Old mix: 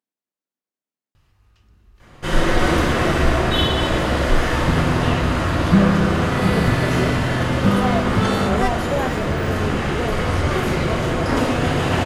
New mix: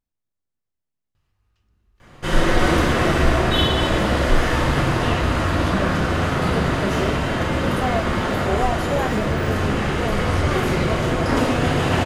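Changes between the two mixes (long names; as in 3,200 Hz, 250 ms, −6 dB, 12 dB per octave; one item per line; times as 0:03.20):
speech: remove high-pass filter 210 Hz 24 dB per octave
second sound −11.0 dB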